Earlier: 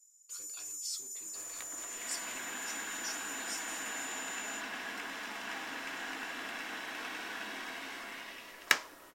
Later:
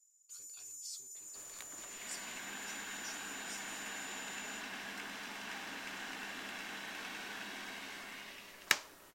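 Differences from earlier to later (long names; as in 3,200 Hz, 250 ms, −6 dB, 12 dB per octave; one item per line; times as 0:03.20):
speech −5.0 dB
reverb: off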